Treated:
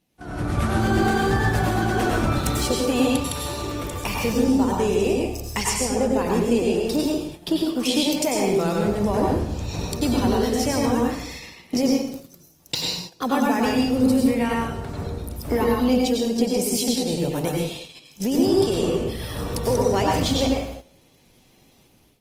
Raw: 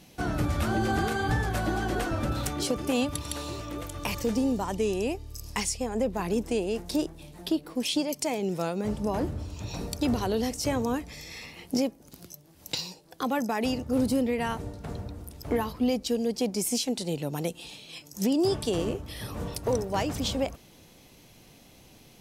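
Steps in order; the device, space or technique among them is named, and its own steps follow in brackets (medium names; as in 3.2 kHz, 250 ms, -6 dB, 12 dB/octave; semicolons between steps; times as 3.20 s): speakerphone in a meeting room (reverberation RT60 0.75 s, pre-delay 88 ms, DRR -1.5 dB; level rider gain up to 12 dB; gate -28 dBFS, range -11 dB; trim -6.5 dB; Opus 24 kbps 48 kHz)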